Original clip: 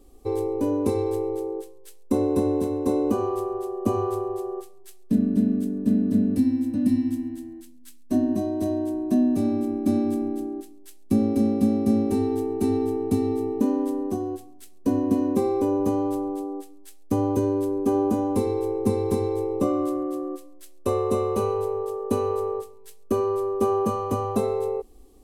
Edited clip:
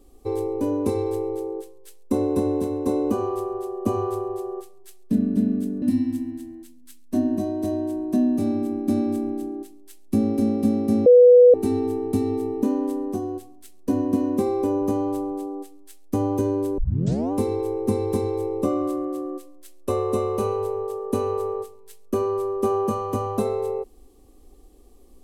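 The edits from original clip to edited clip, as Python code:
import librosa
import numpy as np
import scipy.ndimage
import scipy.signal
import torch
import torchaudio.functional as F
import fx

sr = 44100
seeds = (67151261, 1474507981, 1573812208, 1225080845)

y = fx.edit(x, sr, fx.cut(start_s=5.82, length_s=0.98),
    fx.bleep(start_s=12.04, length_s=0.48, hz=492.0, db=-7.5),
    fx.tape_start(start_s=17.76, length_s=0.54), tone=tone)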